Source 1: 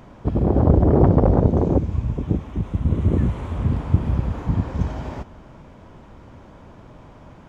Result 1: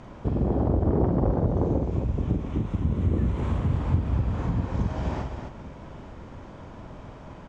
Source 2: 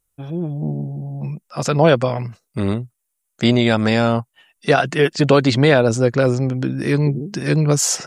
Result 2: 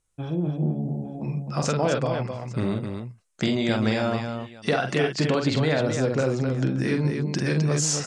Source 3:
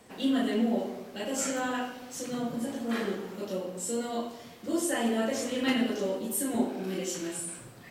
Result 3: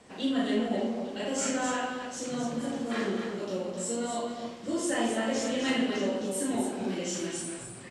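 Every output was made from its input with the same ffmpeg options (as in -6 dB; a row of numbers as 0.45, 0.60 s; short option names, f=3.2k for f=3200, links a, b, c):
-af "lowpass=f=8.7k:w=0.5412,lowpass=f=8.7k:w=1.3066,acompressor=threshold=-24dB:ratio=3,aecho=1:1:46|260|853:0.531|0.501|0.106"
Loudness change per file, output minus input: -6.0, -7.0, 0.0 LU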